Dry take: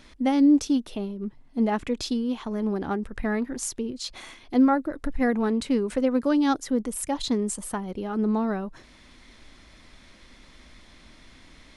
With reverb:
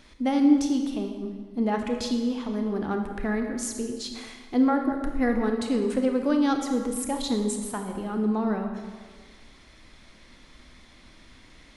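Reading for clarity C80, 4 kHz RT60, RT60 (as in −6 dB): 7.0 dB, 1.2 s, 1.6 s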